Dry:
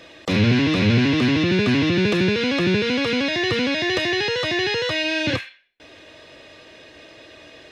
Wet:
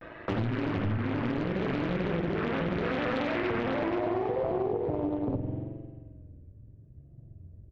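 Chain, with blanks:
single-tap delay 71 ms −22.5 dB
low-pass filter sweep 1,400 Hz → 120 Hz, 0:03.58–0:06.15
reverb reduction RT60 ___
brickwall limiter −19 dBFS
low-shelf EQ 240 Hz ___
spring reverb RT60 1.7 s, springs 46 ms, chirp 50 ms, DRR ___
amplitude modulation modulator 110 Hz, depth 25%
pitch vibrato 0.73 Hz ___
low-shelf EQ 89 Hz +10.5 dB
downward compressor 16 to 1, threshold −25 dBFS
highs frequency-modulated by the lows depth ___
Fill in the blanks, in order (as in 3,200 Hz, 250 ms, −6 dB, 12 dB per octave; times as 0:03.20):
0.68 s, +2.5 dB, 0.5 dB, 95 cents, 1 ms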